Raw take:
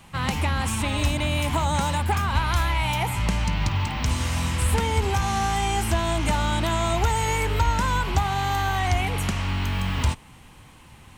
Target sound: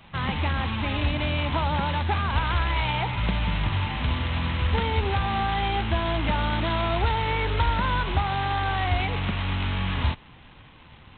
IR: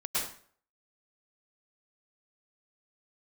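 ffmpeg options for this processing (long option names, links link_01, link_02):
-af "acrusher=bits=5:mode=log:mix=0:aa=0.000001,acontrast=54,volume=-7.5dB" -ar 8000 -c:a adpcm_g726 -b:a 16k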